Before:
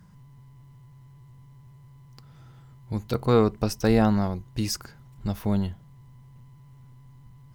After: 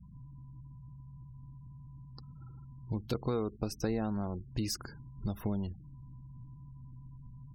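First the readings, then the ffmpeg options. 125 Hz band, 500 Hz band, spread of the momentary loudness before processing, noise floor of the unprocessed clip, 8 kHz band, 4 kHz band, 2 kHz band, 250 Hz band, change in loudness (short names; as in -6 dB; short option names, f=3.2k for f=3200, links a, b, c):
-9.0 dB, -12.0 dB, 13 LU, -51 dBFS, -7.5 dB, -8.0 dB, -12.5 dB, -10.5 dB, -11.0 dB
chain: -af "acompressor=threshold=-32dB:ratio=5,aeval=exprs='val(0)+0.00141*(sin(2*PI*60*n/s)+sin(2*PI*2*60*n/s)/2+sin(2*PI*3*60*n/s)/3+sin(2*PI*4*60*n/s)/4+sin(2*PI*5*60*n/s)/5)':c=same,adynamicequalizer=threshold=0.00398:dfrequency=330:dqfactor=1.8:tfrequency=330:tqfactor=1.8:attack=5:release=100:ratio=0.375:range=2:mode=boostabove:tftype=bell,afftfilt=real='re*gte(hypot(re,im),0.00398)':imag='im*gte(hypot(re,im),0.00398)':win_size=1024:overlap=0.75"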